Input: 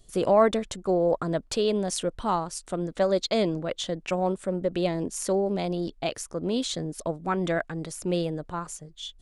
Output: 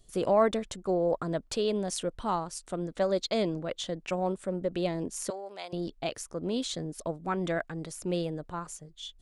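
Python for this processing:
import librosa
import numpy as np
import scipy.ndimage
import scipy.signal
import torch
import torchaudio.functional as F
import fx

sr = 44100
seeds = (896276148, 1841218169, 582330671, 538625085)

y = fx.highpass(x, sr, hz=880.0, slope=12, at=(5.3, 5.73))
y = y * librosa.db_to_amplitude(-4.0)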